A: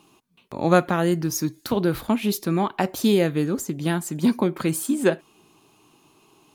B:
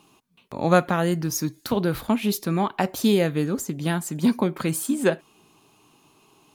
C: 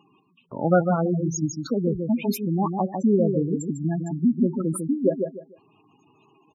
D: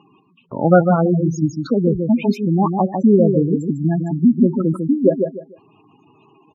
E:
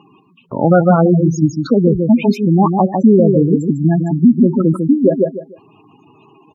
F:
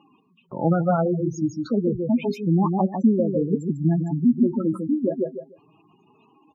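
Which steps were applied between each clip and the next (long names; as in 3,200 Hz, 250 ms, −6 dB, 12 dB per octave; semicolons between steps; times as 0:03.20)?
parametric band 340 Hz −4.5 dB 0.27 octaves
repeating echo 150 ms, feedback 25%, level −5.5 dB; gate on every frequency bin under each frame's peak −10 dB strong
high-frequency loss of the air 190 metres; level +7.5 dB
boost into a limiter +6 dB; level −1 dB
flanger 0.31 Hz, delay 3.4 ms, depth 6.5 ms, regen +24%; level −6.5 dB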